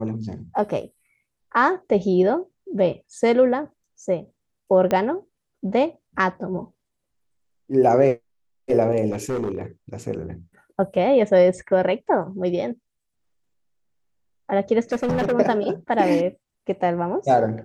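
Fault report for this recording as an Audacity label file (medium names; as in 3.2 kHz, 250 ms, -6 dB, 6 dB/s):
4.910000	4.910000	pop -10 dBFS
9.110000	9.610000	clipped -21.5 dBFS
14.920000	15.330000	clipped -18.5 dBFS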